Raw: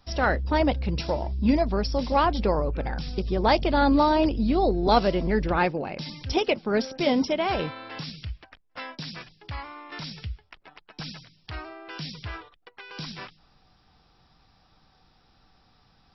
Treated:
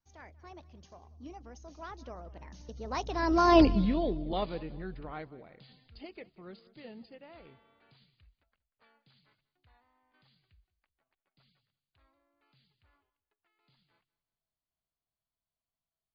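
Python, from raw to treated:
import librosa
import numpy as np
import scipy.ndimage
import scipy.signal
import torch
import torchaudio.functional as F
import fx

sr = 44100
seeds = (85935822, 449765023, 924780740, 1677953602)

y = fx.doppler_pass(x, sr, speed_mps=53, closest_m=5.6, pass_at_s=3.61)
y = fx.echo_feedback(y, sr, ms=188, feedback_pct=39, wet_db=-20.5)
y = y * librosa.db_to_amplitude(3.0)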